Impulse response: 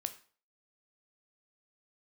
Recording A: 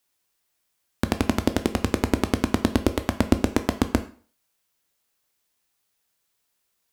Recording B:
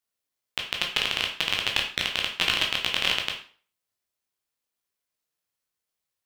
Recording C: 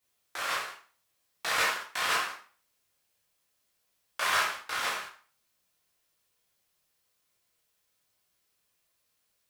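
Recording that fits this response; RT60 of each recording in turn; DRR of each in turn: A; 0.45, 0.45, 0.45 s; 9.0, 0.5, -6.0 dB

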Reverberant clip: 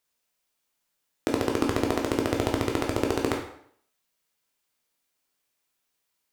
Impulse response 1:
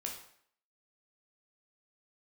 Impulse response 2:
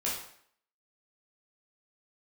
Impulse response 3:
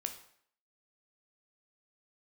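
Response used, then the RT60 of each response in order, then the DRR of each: 1; 0.60, 0.60, 0.60 s; 0.0, -6.5, 5.5 dB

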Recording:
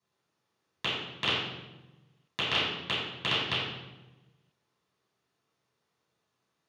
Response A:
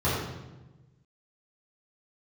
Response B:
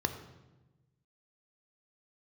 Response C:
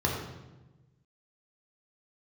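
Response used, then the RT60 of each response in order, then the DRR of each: A; 1.1, 1.1, 1.1 s; -12.5, 7.0, -2.5 dB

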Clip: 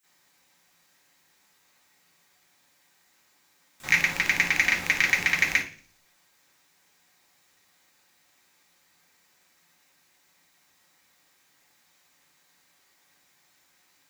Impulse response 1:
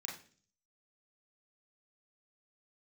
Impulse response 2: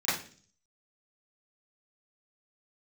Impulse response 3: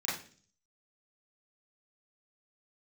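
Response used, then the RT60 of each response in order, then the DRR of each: 2; 0.45, 0.45, 0.45 s; -3.0, -16.0, -10.0 dB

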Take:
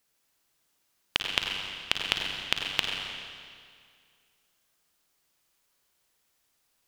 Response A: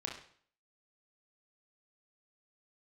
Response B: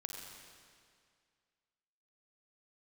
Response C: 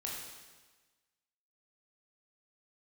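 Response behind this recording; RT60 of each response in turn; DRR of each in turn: B; 0.55, 2.1, 1.3 s; -1.5, 0.5, -3.5 dB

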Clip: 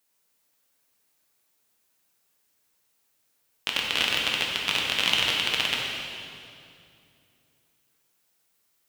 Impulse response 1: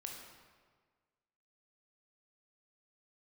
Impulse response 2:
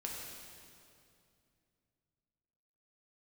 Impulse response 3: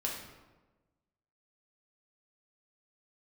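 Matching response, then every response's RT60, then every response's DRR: 2; 1.6, 2.5, 1.2 s; 0.0, -2.5, -2.5 dB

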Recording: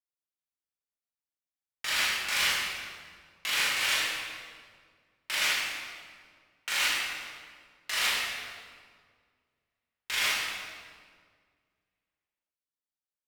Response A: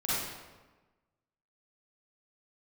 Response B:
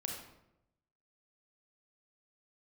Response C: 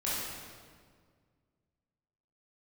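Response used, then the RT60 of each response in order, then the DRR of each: C; 1.3, 0.85, 1.8 s; -10.5, 0.5, -9.0 dB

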